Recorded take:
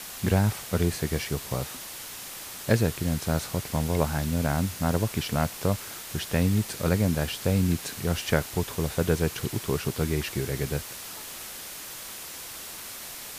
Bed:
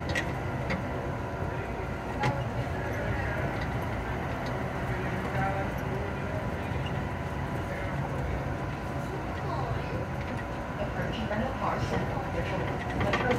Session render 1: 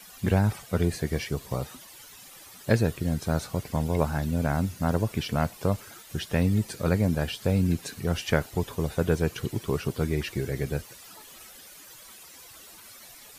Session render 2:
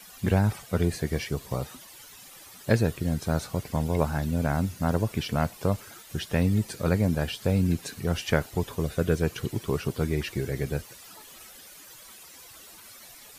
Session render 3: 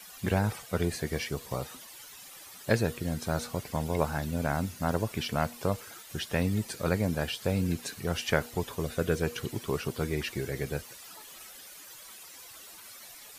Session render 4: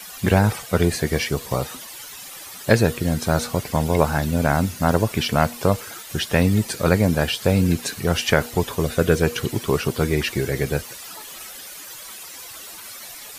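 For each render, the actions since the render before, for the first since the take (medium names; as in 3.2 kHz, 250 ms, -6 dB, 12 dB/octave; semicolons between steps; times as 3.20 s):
noise reduction 13 dB, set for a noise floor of -40 dBFS
8.82–9.23 s: peaking EQ 870 Hz -13.5 dB 0.26 oct
bass shelf 330 Hz -6.5 dB; de-hum 239.4 Hz, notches 2
trim +10.5 dB; peak limiter -1 dBFS, peak gain reduction 2.5 dB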